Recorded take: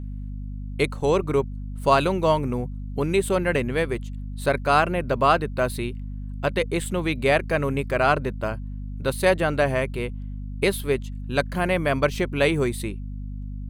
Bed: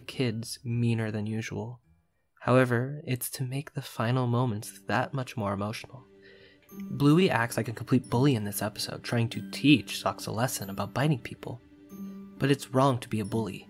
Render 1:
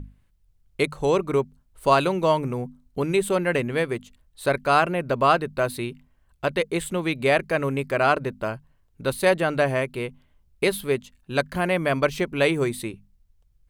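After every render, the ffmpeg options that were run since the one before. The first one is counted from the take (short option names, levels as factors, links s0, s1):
-af "bandreject=f=50:t=h:w=6,bandreject=f=100:t=h:w=6,bandreject=f=150:t=h:w=6,bandreject=f=200:t=h:w=6,bandreject=f=250:t=h:w=6"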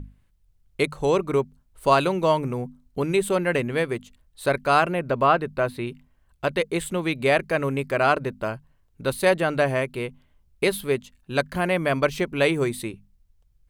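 -filter_complex "[0:a]asettb=1/sr,asplit=3[s0][s1][s2];[s0]atrim=end=4.994[s3];[s1]atrim=start=4.99:end=5.87,asetpts=PTS-STARTPTS,afade=t=in:d=0.004:c=qsin,afade=t=out:st=0.876:d=0.004:c=qsin,acrossover=split=3200[s4][s5];[s5]acompressor=threshold=0.00355:ratio=4:attack=1:release=60[s6];[s4][s6]amix=inputs=2:normalize=0[s7];[s2]atrim=start=5.866[s8];[s3][s7]acrossfade=d=0.004:c1=hsin:c2=qsin[s9];[s9][s8]acrossfade=d=0.004:c1=qsin:c2=hsin"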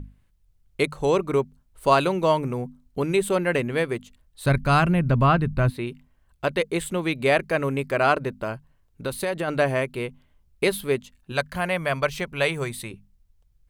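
-filter_complex "[0:a]asplit=3[s0][s1][s2];[s0]afade=t=out:st=4.45:d=0.02[s3];[s1]asubboost=boost=9:cutoff=160,afade=t=in:st=4.45:d=0.02,afade=t=out:st=5.69:d=0.02[s4];[s2]afade=t=in:st=5.69:d=0.02[s5];[s3][s4][s5]amix=inputs=3:normalize=0,asplit=3[s6][s7][s8];[s6]afade=t=out:st=8.37:d=0.02[s9];[s7]acompressor=threshold=0.0794:ratio=6:attack=3.2:release=140:knee=1:detection=peak,afade=t=in:st=8.37:d=0.02,afade=t=out:st=9.47:d=0.02[s10];[s8]afade=t=in:st=9.47:d=0.02[s11];[s9][s10][s11]amix=inputs=3:normalize=0,asettb=1/sr,asplit=3[s12][s13][s14];[s12]atrim=end=11.324[s15];[s13]atrim=start=11.32:end=12.91,asetpts=PTS-STARTPTS,afade=t=in:d=0.004:c=qsin,afade=t=out:st=1.586:d=0.004:c=qsin,equalizer=f=310:w=1.5:g=-11[s16];[s14]atrim=start=12.906[s17];[s15][s16]acrossfade=d=0.004:c1=hsin:c2=qsin[s18];[s18][s17]acrossfade=d=0.004:c1=qsin:c2=hsin"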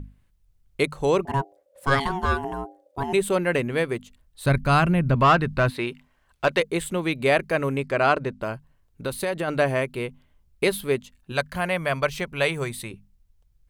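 -filter_complex "[0:a]asettb=1/sr,asplit=3[s0][s1][s2];[s0]atrim=end=1.254[s3];[s1]atrim=start=1.25:end=3.13,asetpts=PTS-STARTPTS,afade=t=in:d=0.004:c=qsin,afade=t=out:st=1.876:d=0.004:c=qsin,aeval=exprs='val(0)*sin(2*PI*550*n/s)':c=same[s4];[s2]atrim=start=3.126[s5];[s3][s4]acrossfade=d=0.004:c1=hsin:c2=qsin[s6];[s6][s5]acrossfade=d=0.004:c1=qsin:c2=hsin,asettb=1/sr,asplit=3[s7][s8][s9];[s7]atrim=end=5.154[s10];[s8]atrim=start=5.15:end=6.6,asetpts=PTS-STARTPTS,afade=t=in:d=0.004:c=qsin,afade=t=out:st=1.446:d=0.004:c=qsin,asplit=2[s11][s12];[s12]highpass=f=720:p=1,volume=4.47,asoftclip=type=tanh:threshold=0.398[s13];[s11][s13]amix=inputs=2:normalize=0,lowpass=f=4900:p=1,volume=0.501[s14];[s9]atrim=start=6.596[s15];[s10][s14]acrossfade=d=0.004:c1=hsin:c2=qsin[s16];[s16][s15]acrossfade=d=0.004:c1=qsin:c2=hsin,asettb=1/sr,asplit=3[s17][s18][s19];[s17]atrim=end=7.784[s20];[s18]atrim=start=7.78:end=8.42,asetpts=PTS-STARTPTS,afade=t=in:d=0.004:c=qsin,afade=t=out:st=0.636:d=0.004:c=qsin,lowpass=8100[s21];[s19]atrim=start=8.416[s22];[s20][s21]acrossfade=d=0.004:c1=hsin:c2=qsin[s23];[s23][s22]acrossfade=d=0.004:c1=qsin:c2=hsin"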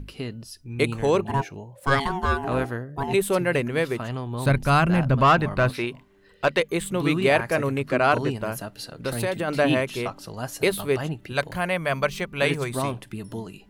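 -filter_complex "[1:a]volume=0.631[s0];[0:a][s0]amix=inputs=2:normalize=0"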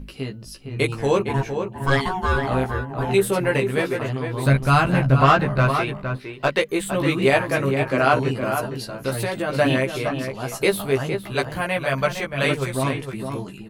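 -filter_complex "[0:a]asplit=2[s0][s1];[s1]adelay=15,volume=0.75[s2];[s0][s2]amix=inputs=2:normalize=0,asplit=2[s3][s4];[s4]adelay=460.6,volume=0.447,highshelf=f=4000:g=-10.4[s5];[s3][s5]amix=inputs=2:normalize=0"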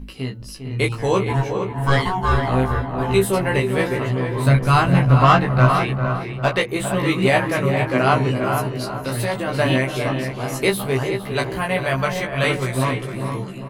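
-filter_complex "[0:a]asplit=2[s0][s1];[s1]adelay=16,volume=0.668[s2];[s0][s2]amix=inputs=2:normalize=0,asplit=2[s3][s4];[s4]adelay=401,lowpass=f=1500:p=1,volume=0.398,asplit=2[s5][s6];[s6]adelay=401,lowpass=f=1500:p=1,volume=0.49,asplit=2[s7][s8];[s8]adelay=401,lowpass=f=1500:p=1,volume=0.49,asplit=2[s9][s10];[s10]adelay=401,lowpass=f=1500:p=1,volume=0.49,asplit=2[s11][s12];[s12]adelay=401,lowpass=f=1500:p=1,volume=0.49,asplit=2[s13][s14];[s14]adelay=401,lowpass=f=1500:p=1,volume=0.49[s15];[s5][s7][s9][s11][s13][s15]amix=inputs=6:normalize=0[s16];[s3][s16]amix=inputs=2:normalize=0"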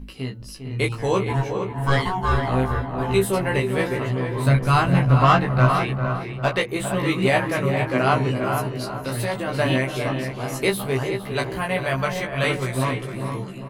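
-af "volume=0.75"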